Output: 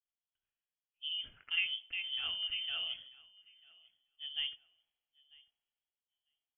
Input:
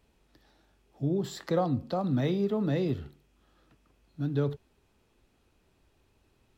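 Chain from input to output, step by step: low shelf 170 Hz -9 dB; on a send: feedback echo 0.944 s, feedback 19%, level -14.5 dB; on the sum: inverted band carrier 3300 Hz; three-band expander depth 70%; gain -8.5 dB

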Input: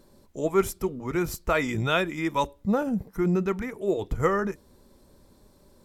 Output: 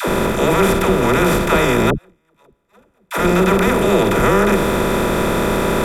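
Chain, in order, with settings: per-bin compression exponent 0.2; in parallel at -1.5 dB: limiter -12 dBFS, peak gain reduction 9.5 dB; 1.9–3.11 on the sum: gate -7 dBFS, range -49 dB; dispersion lows, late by 82 ms, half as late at 430 Hz; gain -1 dB

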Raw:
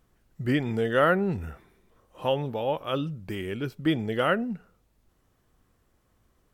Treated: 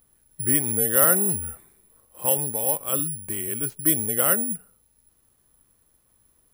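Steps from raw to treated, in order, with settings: careless resampling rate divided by 4×, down none, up zero stuff; gain -2.5 dB

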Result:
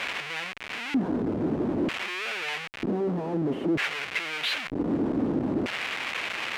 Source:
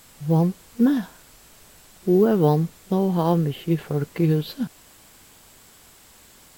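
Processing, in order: treble ducked by the level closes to 1400 Hz, closed at -16.5 dBFS; overdrive pedal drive 28 dB, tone 6300 Hz, clips at -8 dBFS; Schmitt trigger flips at -27 dBFS; LFO band-pass square 0.53 Hz 290–2400 Hz

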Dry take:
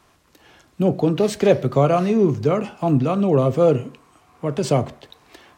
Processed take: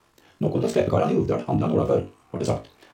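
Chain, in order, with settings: ring modulator 32 Hz; flutter echo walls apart 6.5 m, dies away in 0.46 s; tempo 1.9×; gain -2 dB

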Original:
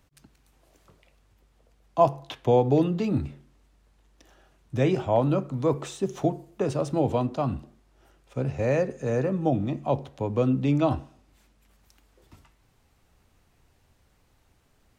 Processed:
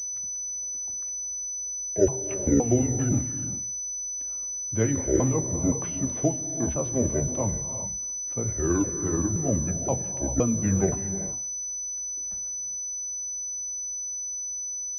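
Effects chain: repeated pitch sweeps -10.5 st, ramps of 0.52 s; non-linear reverb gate 0.43 s rising, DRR 8.5 dB; pulse-width modulation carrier 6000 Hz

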